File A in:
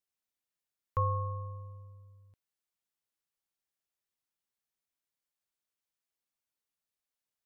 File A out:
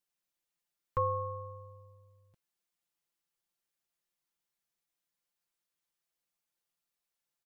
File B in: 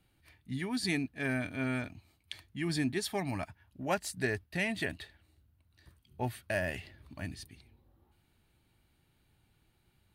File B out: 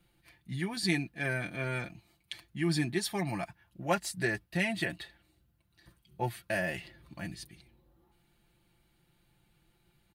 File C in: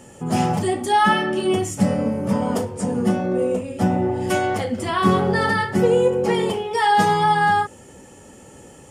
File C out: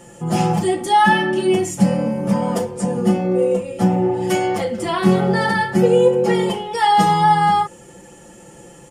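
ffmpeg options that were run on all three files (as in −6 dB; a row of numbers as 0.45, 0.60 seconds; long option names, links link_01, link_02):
-af "aecho=1:1:5.8:0.76"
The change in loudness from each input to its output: −0.5, +1.5, +2.5 LU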